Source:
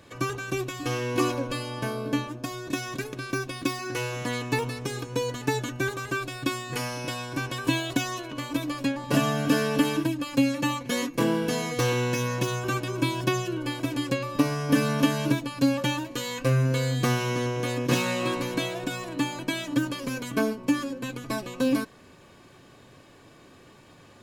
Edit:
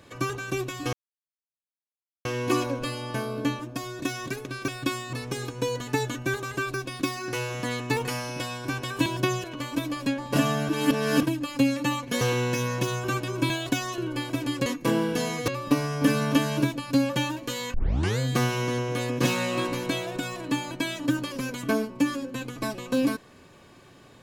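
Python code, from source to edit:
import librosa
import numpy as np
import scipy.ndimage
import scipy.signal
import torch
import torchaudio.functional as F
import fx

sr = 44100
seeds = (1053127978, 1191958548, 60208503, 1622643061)

y = fx.edit(x, sr, fx.insert_silence(at_s=0.93, length_s=1.32),
    fx.swap(start_s=3.36, length_s=1.31, other_s=6.28, other_length_s=0.45),
    fx.swap(start_s=7.74, length_s=0.48, other_s=13.1, other_length_s=0.38),
    fx.reverse_span(start_s=9.47, length_s=0.54),
    fx.move(start_s=10.99, length_s=0.82, to_s=14.16),
    fx.tape_start(start_s=16.42, length_s=0.45), tone=tone)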